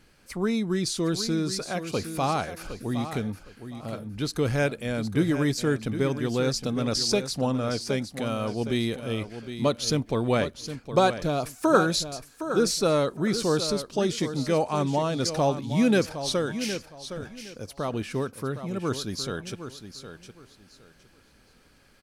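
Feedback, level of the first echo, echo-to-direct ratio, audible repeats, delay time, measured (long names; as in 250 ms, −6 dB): 23%, −10.5 dB, −10.5 dB, 2, 763 ms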